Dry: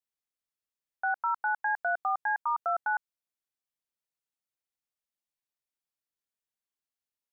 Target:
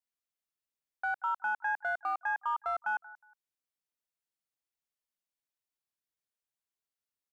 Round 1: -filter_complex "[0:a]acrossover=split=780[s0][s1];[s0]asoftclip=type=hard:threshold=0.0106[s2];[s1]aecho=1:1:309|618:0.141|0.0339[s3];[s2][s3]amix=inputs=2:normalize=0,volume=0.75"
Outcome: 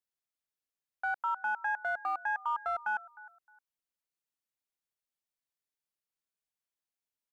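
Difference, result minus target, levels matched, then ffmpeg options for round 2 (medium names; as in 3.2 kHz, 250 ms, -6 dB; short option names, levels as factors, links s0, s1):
echo 127 ms late
-filter_complex "[0:a]acrossover=split=780[s0][s1];[s0]asoftclip=type=hard:threshold=0.0106[s2];[s1]aecho=1:1:182|364:0.141|0.0339[s3];[s2][s3]amix=inputs=2:normalize=0,volume=0.75"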